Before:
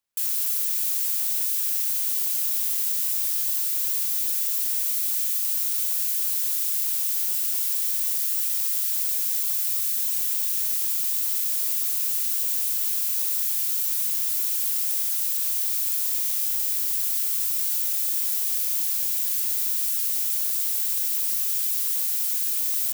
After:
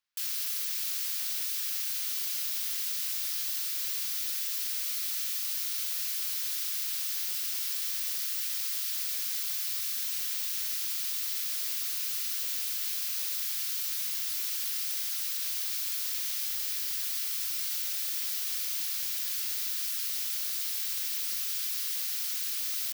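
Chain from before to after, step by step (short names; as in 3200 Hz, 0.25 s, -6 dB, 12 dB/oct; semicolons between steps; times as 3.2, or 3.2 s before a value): band shelf 2500 Hz +9.5 dB 2.7 oct; gain -8.5 dB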